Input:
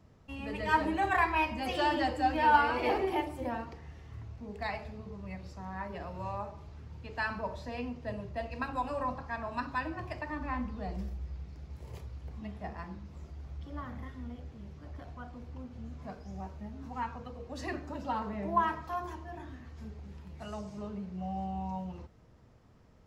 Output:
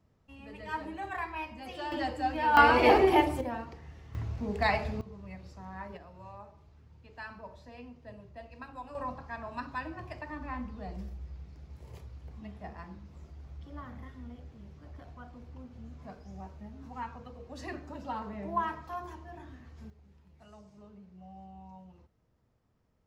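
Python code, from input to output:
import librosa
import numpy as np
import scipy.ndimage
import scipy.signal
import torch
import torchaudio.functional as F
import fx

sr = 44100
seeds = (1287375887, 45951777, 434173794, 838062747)

y = fx.gain(x, sr, db=fx.steps((0.0, -9.0), (1.92, -2.5), (2.57, 8.5), (3.41, -0.5), (4.15, 9.0), (5.01, -3.0), (5.97, -10.0), (8.95, -3.0), (19.9, -13.0)))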